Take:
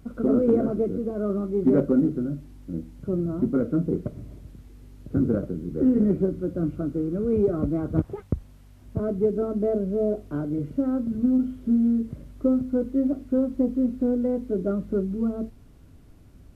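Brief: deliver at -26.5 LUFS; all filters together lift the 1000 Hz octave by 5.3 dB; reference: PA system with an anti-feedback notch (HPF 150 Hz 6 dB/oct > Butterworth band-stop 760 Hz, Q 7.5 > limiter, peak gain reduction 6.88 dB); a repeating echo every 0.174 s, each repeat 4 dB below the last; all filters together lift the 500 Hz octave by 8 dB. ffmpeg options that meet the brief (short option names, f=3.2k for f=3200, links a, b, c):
-af "highpass=f=150:p=1,asuperstop=centerf=760:order=8:qfactor=7.5,equalizer=f=500:t=o:g=9,equalizer=f=1k:t=o:g=5.5,aecho=1:1:174|348|522|696|870|1044|1218|1392|1566:0.631|0.398|0.25|0.158|0.0994|0.0626|0.0394|0.0249|0.0157,volume=-6dB,alimiter=limit=-15.5dB:level=0:latency=1"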